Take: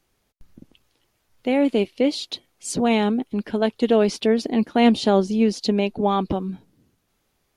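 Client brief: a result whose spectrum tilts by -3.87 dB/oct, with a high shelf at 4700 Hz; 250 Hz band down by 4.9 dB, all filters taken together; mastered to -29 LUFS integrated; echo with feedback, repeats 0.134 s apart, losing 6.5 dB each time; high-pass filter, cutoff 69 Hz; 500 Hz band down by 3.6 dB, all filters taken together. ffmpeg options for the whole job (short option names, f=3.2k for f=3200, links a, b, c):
-af "highpass=69,equalizer=f=250:t=o:g=-5,equalizer=f=500:t=o:g=-3,highshelf=f=4.7k:g=-3,aecho=1:1:134|268|402|536|670|804:0.473|0.222|0.105|0.0491|0.0231|0.0109,volume=-5dB"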